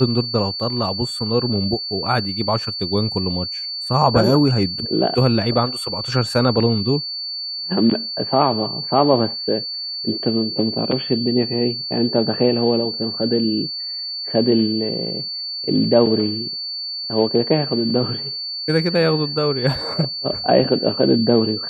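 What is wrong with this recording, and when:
tone 4500 Hz -25 dBFS

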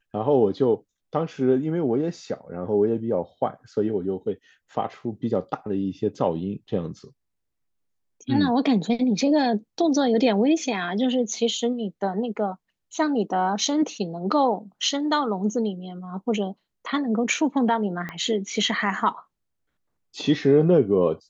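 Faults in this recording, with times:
18.09 pop -19 dBFS

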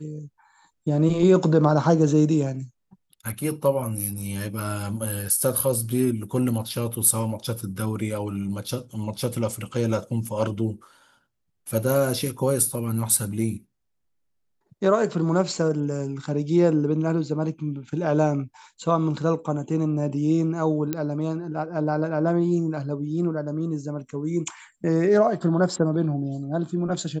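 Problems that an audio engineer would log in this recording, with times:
20.93 pop -12 dBFS

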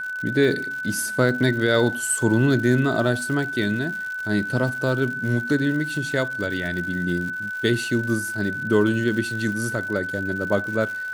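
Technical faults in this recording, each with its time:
crackle 170/s -31 dBFS
tone 1500 Hz -27 dBFS

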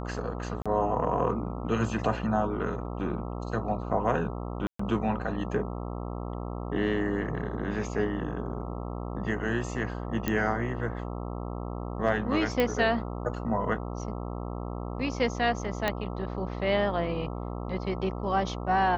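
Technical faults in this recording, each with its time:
buzz 60 Hz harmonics 22 -35 dBFS
0.62–0.66 gap 36 ms
4.67–4.79 gap 0.124 s
10.28 pop -13 dBFS
12.6 pop -13 dBFS
15.88 pop -12 dBFS

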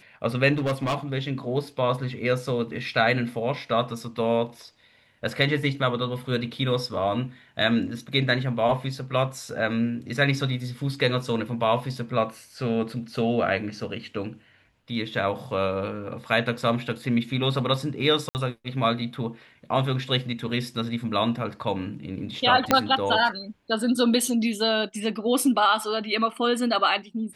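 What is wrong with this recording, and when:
0.53–0.96 clipped -21.5 dBFS
18.29–18.35 gap 59 ms
22.71 pop -4 dBFS

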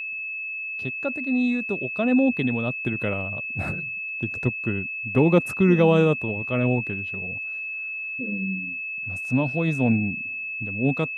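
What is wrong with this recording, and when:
tone 2600 Hz -29 dBFS

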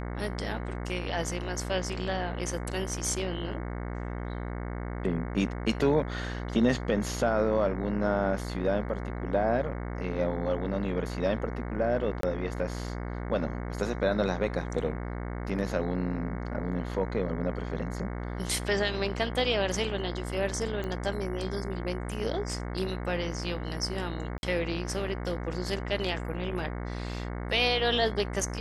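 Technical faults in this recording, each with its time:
buzz 60 Hz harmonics 37 -35 dBFS
12.21–12.23 gap 23 ms
20.84 pop -22 dBFS
24.38–24.43 gap 51 ms

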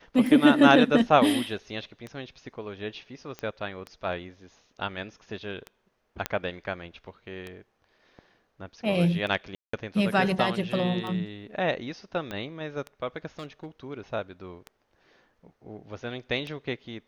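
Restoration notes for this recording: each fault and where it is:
tick 33 1/3 rpm
3.39 pop -22 dBFS
6.26 pop -10 dBFS
9.55–9.73 gap 0.184 s
12.31 pop -20 dBFS
13.39–13.87 clipped -32.5 dBFS

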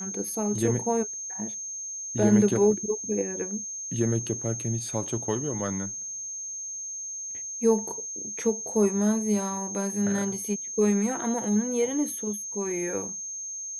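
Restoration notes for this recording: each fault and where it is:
tone 6400 Hz -33 dBFS

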